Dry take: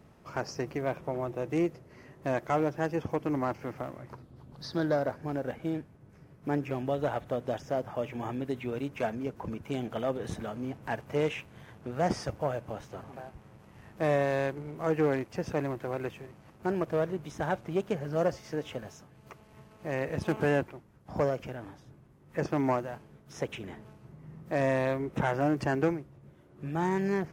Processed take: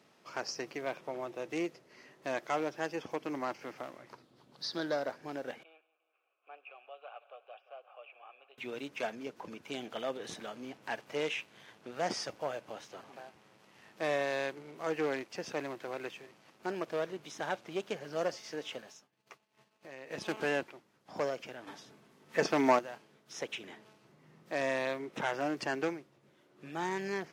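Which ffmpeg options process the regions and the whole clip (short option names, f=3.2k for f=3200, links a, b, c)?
-filter_complex "[0:a]asettb=1/sr,asplit=3[a][b][c];[a]atrim=end=5.634[d];[b]atrim=start=5.63:end=8.58,asetpts=PTS-STARTPTS,afade=t=in:d=0.004:c=qsin,afade=t=out:st=2.946:d=0.004:c=qsin,asplit=3[e][f][g];[e]bandpass=f=730:t=q:w=8,volume=0dB[h];[f]bandpass=f=1.09k:t=q:w=8,volume=-6dB[i];[g]bandpass=f=2.44k:t=q:w=8,volume=-9dB[j];[h][i][j]amix=inputs=3:normalize=0,highpass=f=470:w=0.5412,highpass=f=470:w=1.3066,equalizer=f=680:t=q:w=4:g=-9,equalizer=f=1k:t=q:w=4:g=-4,equalizer=f=1.4k:t=q:w=4:g=5,equalizer=f=2.7k:t=q:w=4:g=7,lowpass=f=3.6k:w=0.5412,lowpass=f=3.6k:w=1.3066,aecho=1:1:175|350|525|700|875:0.119|0.0666|0.0373|0.0209|0.0117,atrim=end_sample=130095[k];[c]atrim=start=8.576[l];[d][k]acrossfade=d=0.004:c1=hsin:c2=qsin[m];[m][l]acrossfade=d=0.004:c1=qsin:c2=hsin,asettb=1/sr,asplit=3[n][o][p];[n]atrim=end=18.824[q];[o]atrim=start=18.82:end=20.11,asetpts=PTS-STARTPTS,afade=t=in:d=0.004:c=qsin,afade=t=out:st=1.286:d=0.004:c=qsin,agate=range=-33dB:threshold=-47dB:ratio=3:release=100:detection=peak,asplit=2[r][s];[s]adelay=15,volume=-11dB[t];[r][t]amix=inputs=2:normalize=0,atrim=end_sample=56889,acompressor=threshold=-42dB:ratio=3:attack=3.2:release=140:knee=1:detection=peak[u];[p]atrim=start=20.106[v];[q][u]acrossfade=d=0.004:c1=hsin:c2=qsin[w];[w][v]acrossfade=d=0.004:c1=qsin:c2=hsin,asettb=1/sr,asplit=3[x][y][z];[x]atrim=end=21.674[aa];[y]atrim=start=21.67:end=22.79,asetpts=PTS-STARTPTS,afade=t=in:d=0.004:c=qsin,afade=t=out:st=1.116:d=0.004:c=qsin,aecho=1:1:4.5:0.32,atrim=end_sample=49392,acontrast=88[ab];[z]atrim=start=22.786[ac];[aa][ab]acrossfade=d=0.004:c1=hsin:c2=qsin[ad];[ad][ac]acrossfade=d=0.004:c1=qsin:c2=hsin,highpass=260,equalizer=f=4.2k:t=o:w=2.2:g=11,volume=-6dB"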